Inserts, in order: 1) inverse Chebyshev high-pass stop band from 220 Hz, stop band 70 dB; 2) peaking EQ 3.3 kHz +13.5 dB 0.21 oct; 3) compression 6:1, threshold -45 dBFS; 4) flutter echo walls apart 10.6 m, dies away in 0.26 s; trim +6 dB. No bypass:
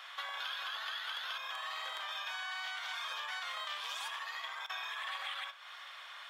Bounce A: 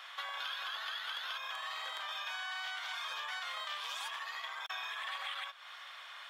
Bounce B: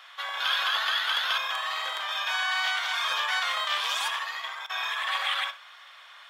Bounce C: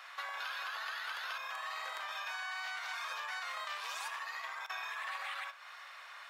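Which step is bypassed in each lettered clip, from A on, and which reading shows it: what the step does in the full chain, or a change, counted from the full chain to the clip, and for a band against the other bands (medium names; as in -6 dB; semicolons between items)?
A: 4, echo-to-direct -14.0 dB to none; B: 3, mean gain reduction 10.0 dB; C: 2, 4 kHz band -6.5 dB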